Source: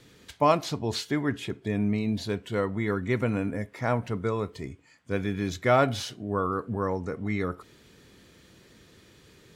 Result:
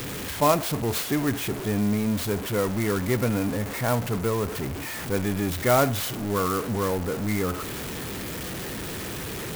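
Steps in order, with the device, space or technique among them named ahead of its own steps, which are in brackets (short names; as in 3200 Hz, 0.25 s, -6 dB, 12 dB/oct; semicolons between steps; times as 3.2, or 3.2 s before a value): early CD player with a faulty converter (zero-crossing step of -27.5 dBFS; clock jitter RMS 0.052 ms)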